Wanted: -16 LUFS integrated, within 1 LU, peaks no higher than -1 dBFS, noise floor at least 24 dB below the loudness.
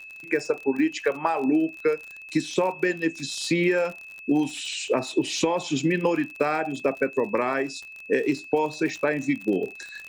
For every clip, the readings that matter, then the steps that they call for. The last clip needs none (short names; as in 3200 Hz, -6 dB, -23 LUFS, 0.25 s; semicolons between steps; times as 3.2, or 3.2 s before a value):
ticks 45/s; steady tone 2600 Hz; tone level -40 dBFS; loudness -25.5 LUFS; peak -9.5 dBFS; loudness target -16.0 LUFS
-> de-click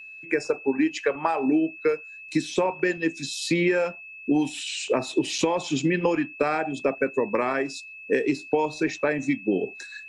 ticks 0/s; steady tone 2600 Hz; tone level -40 dBFS
-> notch 2600 Hz, Q 30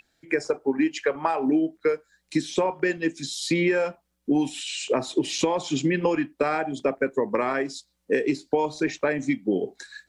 steady tone none; loudness -26.0 LUFS; peak -9.5 dBFS; loudness target -16.0 LUFS
-> gain +10 dB; limiter -1 dBFS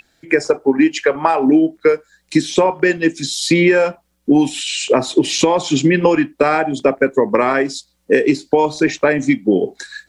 loudness -16.0 LUFS; peak -1.0 dBFS; noise floor -63 dBFS